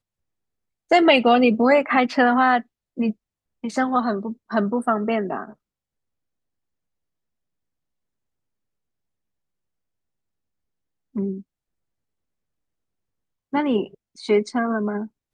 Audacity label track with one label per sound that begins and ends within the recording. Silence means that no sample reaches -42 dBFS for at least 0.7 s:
0.910000	5.530000	sound
11.150000	11.420000	sound